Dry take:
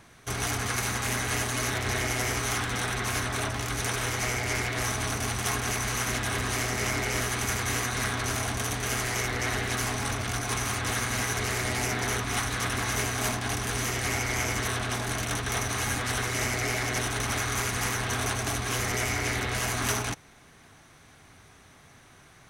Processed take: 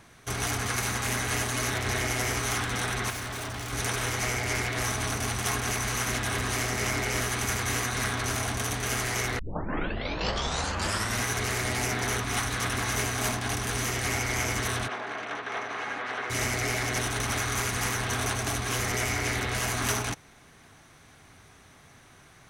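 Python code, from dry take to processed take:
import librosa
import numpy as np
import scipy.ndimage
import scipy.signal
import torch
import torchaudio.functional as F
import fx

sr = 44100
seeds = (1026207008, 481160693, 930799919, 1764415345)

y = fx.clip_hard(x, sr, threshold_db=-33.0, at=(3.1, 3.73))
y = fx.bandpass_edges(y, sr, low_hz=400.0, high_hz=2300.0, at=(14.87, 16.29), fade=0.02)
y = fx.edit(y, sr, fx.tape_start(start_s=9.39, length_s=1.84), tone=tone)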